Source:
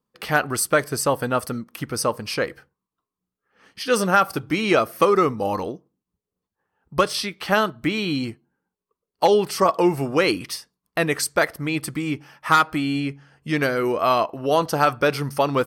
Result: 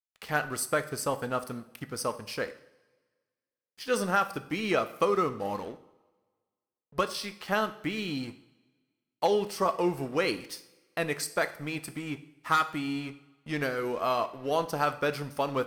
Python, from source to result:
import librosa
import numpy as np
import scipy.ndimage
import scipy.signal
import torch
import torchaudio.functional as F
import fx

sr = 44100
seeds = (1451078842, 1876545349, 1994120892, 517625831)

y = np.sign(x) * np.maximum(np.abs(x) - 10.0 ** (-39.5 / 20.0), 0.0)
y = fx.rev_double_slope(y, sr, seeds[0], early_s=0.6, late_s=1.6, knee_db=-16, drr_db=10.0)
y = y * librosa.db_to_amplitude(-8.5)